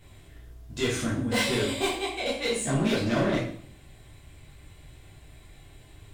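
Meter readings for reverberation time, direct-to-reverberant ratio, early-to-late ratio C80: 0.55 s, -7.5 dB, 9.0 dB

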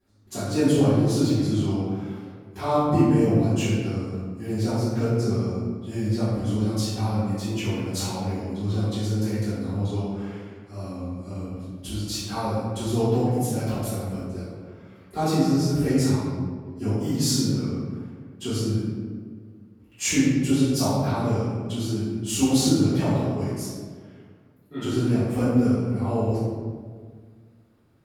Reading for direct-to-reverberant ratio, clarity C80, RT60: -16.5 dB, 0.0 dB, 1.7 s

